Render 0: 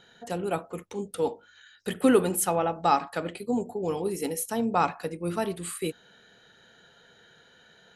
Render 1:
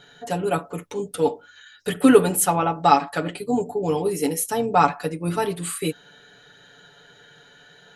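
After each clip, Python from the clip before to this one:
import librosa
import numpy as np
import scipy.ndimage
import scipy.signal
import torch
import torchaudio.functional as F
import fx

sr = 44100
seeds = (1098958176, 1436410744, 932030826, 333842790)

y = x + 0.73 * np.pad(x, (int(6.9 * sr / 1000.0), 0))[:len(x)]
y = y * 10.0 ** (4.5 / 20.0)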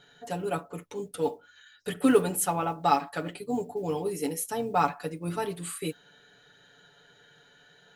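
y = fx.mod_noise(x, sr, seeds[0], snr_db=35)
y = y * 10.0 ** (-7.5 / 20.0)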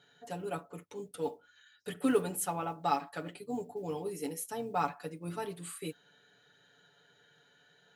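y = scipy.signal.sosfilt(scipy.signal.butter(2, 72.0, 'highpass', fs=sr, output='sos'), x)
y = y * 10.0 ** (-7.0 / 20.0)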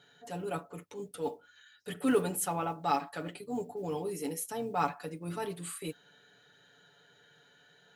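y = fx.transient(x, sr, attack_db=-5, sustain_db=0)
y = y * 10.0 ** (3.0 / 20.0)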